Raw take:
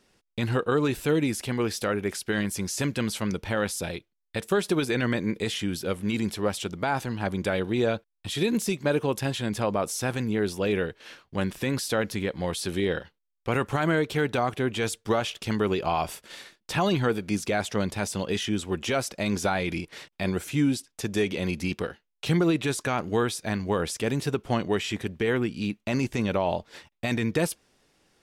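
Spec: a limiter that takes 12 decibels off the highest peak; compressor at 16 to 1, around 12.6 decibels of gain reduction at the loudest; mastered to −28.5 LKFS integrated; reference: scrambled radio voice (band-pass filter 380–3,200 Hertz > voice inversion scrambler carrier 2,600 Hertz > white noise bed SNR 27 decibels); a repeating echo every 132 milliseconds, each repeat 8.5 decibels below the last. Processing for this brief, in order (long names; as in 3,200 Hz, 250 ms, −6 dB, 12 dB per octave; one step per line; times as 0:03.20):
downward compressor 16 to 1, threshold −32 dBFS
brickwall limiter −32 dBFS
band-pass filter 380–3,200 Hz
repeating echo 132 ms, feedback 38%, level −8.5 dB
voice inversion scrambler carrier 2,600 Hz
white noise bed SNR 27 dB
level +15.5 dB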